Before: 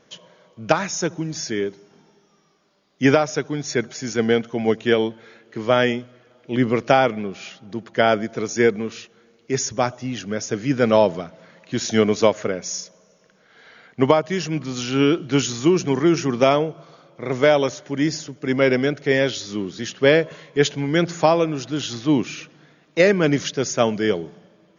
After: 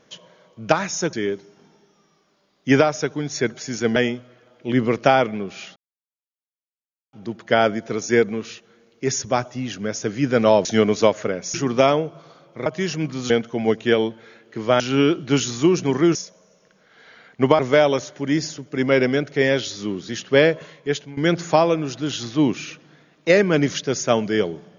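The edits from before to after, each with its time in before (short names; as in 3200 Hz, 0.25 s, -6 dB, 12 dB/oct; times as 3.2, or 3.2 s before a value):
1.13–1.47 cut
4.3–5.8 move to 14.82
7.6 insert silence 1.37 s
11.12–11.85 cut
12.74–14.18 swap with 16.17–17.29
20.29–20.87 fade out, to -16 dB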